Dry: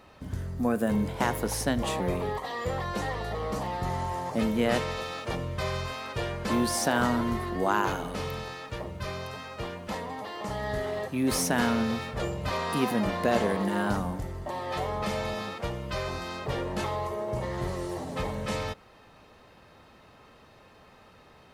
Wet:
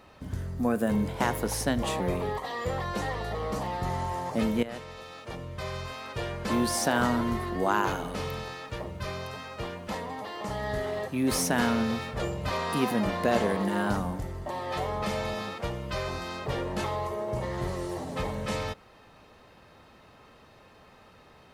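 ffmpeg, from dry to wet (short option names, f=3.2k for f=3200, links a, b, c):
-filter_complex "[0:a]asplit=2[a][b];[a]atrim=end=4.63,asetpts=PTS-STARTPTS,afade=t=out:st=4.626:d=0.004:c=hsin:silence=0.177828[c];[b]atrim=start=4.63,asetpts=PTS-STARTPTS,afade=t=in:d=2.04:silence=0.177828[d];[c][d]concat=n=2:v=0:a=1"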